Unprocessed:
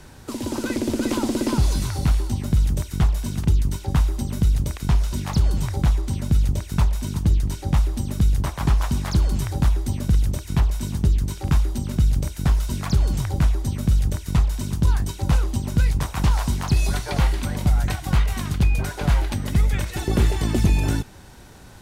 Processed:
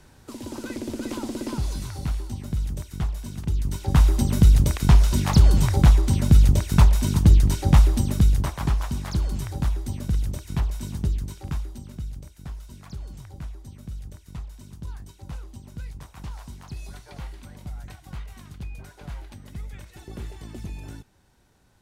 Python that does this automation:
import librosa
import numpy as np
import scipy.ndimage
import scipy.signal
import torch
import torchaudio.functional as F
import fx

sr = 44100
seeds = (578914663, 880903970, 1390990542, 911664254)

y = fx.gain(x, sr, db=fx.line((3.46, -8.0), (4.09, 4.5), (7.91, 4.5), (8.84, -5.5), (11.04, -5.5), (12.28, -17.5)))